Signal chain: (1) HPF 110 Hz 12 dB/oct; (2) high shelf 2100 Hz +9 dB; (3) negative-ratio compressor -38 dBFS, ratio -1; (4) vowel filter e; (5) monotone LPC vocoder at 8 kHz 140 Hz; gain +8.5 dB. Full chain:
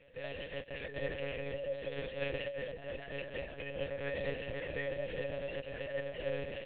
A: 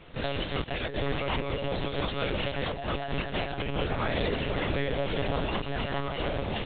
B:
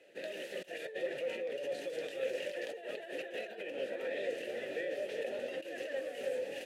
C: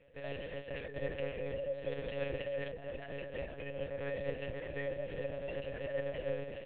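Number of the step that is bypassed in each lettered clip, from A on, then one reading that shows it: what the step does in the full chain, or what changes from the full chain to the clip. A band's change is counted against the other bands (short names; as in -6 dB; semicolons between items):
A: 4, 500 Hz band -8.0 dB; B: 5, 500 Hz band +2.0 dB; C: 2, 4 kHz band -5.0 dB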